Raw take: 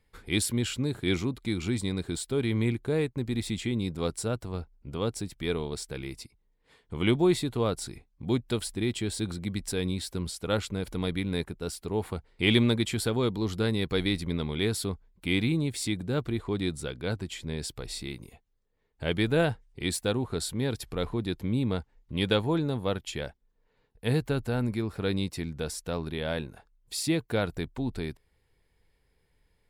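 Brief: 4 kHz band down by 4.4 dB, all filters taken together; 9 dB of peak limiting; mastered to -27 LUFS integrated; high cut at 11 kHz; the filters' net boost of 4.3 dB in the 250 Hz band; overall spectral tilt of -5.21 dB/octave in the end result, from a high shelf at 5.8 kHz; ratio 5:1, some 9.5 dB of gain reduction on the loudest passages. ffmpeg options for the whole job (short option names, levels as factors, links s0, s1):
-af "lowpass=11000,equalizer=f=250:t=o:g=5.5,equalizer=f=4000:t=o:g=-8.5,highshelf=f=5800:g=9,acompressor=threshold=0.0501:ratio=5,volume=2.51,alimiter=limit=0.141:level=0:latency=1"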